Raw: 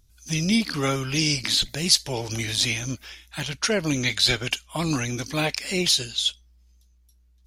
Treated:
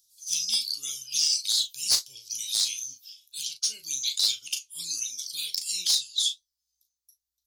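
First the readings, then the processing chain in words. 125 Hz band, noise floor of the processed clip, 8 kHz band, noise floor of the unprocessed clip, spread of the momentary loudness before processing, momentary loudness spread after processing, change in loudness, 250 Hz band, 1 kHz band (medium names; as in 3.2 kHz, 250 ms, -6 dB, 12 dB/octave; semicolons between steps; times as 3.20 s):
under -30 dB, under -85 dBFS, +1.5 dB, -59 dBFS, 9 LU, 11 LU, -3.0 dB, under -35 dB, under -20 dB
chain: inverse Chebyshev high-pass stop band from 2 kHz, stop band 40 dB; reverb removal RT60 1.6 s; in parallel at -0.5 dB: compressor with a negative ratio -29 dBFS, ratio -0.5; on the sum: hard clipper -14.5 dBFS, distortion -15 dB; flange 1.4 Hz, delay 8.8 ms, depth 6.9 ms, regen +51%; doubling 37 ms -9 dB; trim +2.5 dB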